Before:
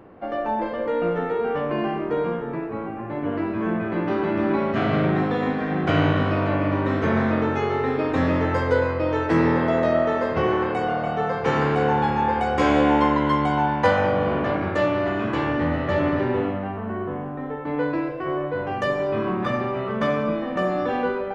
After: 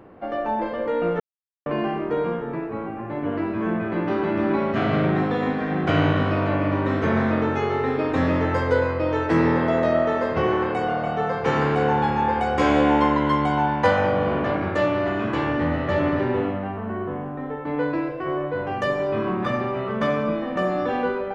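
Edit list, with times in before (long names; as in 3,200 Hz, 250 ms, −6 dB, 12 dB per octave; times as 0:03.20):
0:01.20–0:01.66: silence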